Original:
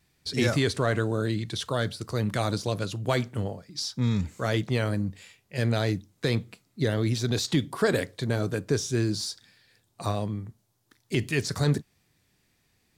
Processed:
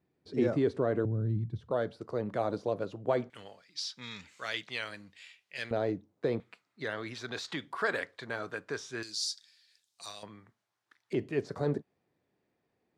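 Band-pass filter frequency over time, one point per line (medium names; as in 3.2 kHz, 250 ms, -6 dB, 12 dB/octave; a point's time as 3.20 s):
band-pass filter, Q 1.1
380 Hz
from 1.05 s 110 Hz
from 1.71 s 540 Hz
from 3.30 s 2.7 kHz
from 5.71 s 520 Hz
from 6.40 s 1.4 kHz
from 9.03 s 5.3 kHz
from 10.23 s 1.6 kHz
from 11.13 s 500 Hz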